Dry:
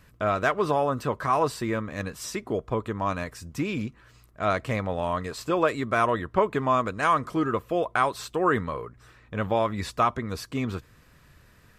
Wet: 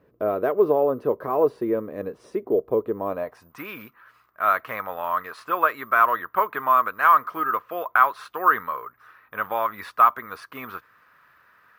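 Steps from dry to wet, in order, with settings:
bad sample-rate conversion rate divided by 3×, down filtered, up zero stuff
band-pass filter sweep 430 Hz → 1,300 Hz, 0:03.06–0:03.60
level +9 dB

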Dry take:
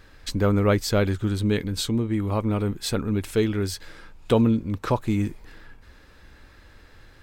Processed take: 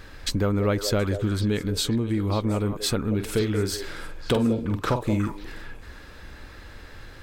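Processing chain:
downward compressor 2.5 to 1, threshold −32 dBFS, peak gain reduction 11.5 dB
0:03.14–0:05.17: double-tracking delay 47 ms −8 dB
echo through a band-pass that steps 181 ms, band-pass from 510 Hz, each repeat 1.4 octaves, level −6 dB
level +7 dB

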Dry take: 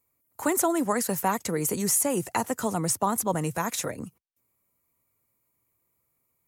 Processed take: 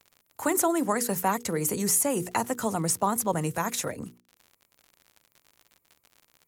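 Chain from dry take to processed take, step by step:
surface crackle 81 per second −40 dBFS
mains-hum notches 60/120/180/240/300/360/420/480 Hz

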